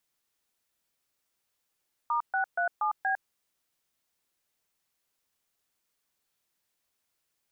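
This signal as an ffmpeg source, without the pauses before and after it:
-f lavfi -i "aevalsrc='0.0422*clip(min(mod(t,0.237),0.104-mod(t,0.237))/0.002,0,1)*(eq(floor(t/0.237),0)*(sin(2*PI*941*mod(t,0.237))+sin(2*PI*1209*mod(t,0.237)))+eq(floor(t/0.237),1)*(sin(2*PI*770*mod(t,0.237))+sin(2*PI*1477*mod(t,0.237)))+eq(floor(t/0.237),2)*(sin(2*PI*697*mod(t,0.237))+sin(2*PI*1477*mod(t,0.237)))+eq(floor(t/0.237),3)*(sin(2*PI*852*mod(t,0.237))+sin(2*PI*1209*mod(t,0.237)))+eq(floor(t/0.237),4)*(sin(2*PI*770*mod(t,0.237))+sin(2*PI*1633*mod(t,0.237))))':d=1.185:s=44100"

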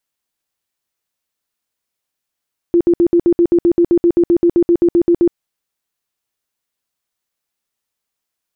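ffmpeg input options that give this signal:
-f lavfi -i "aevalsrc='0.422*sin(2*PI*344*mod(t,0.13))*lt(mod(t,0.13),23/344)':d=2.6:s=44100"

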